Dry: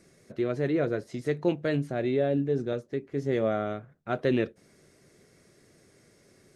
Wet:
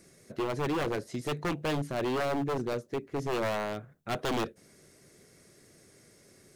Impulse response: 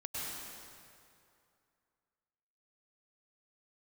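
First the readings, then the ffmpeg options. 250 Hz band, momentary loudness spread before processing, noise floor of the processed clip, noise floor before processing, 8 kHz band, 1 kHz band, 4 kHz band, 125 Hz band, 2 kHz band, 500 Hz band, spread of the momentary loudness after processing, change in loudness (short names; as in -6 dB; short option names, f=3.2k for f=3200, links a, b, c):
-5.0 dB, 8 LU, -60 dBFS, -61 dBFS, n/a, +4.0 dB, +5.5 dB, -4.0 dB, +0.5 dB, -4.5 dB, 6 LU, -3.5 dB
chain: -af "aeval=exprs='0.0562*(abs(mod(val(0)/0.0562+3,4)-2)-1)':c=same,crystalizer=i=1:c=0"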